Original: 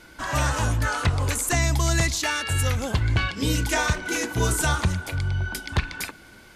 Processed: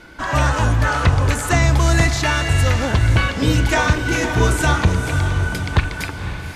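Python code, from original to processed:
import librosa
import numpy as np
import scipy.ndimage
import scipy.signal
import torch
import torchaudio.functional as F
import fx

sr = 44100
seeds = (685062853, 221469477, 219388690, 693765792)

p1 = fx.lowpass(x, sr, hz=3000.0, slope=6)
p2 = p1 + fx.echo_diffused(p1, sr, ms=527, feedback_pct=48, wet_db=-8, dry=0)
y = p2 * librosa.db_to_amplitude(7.0)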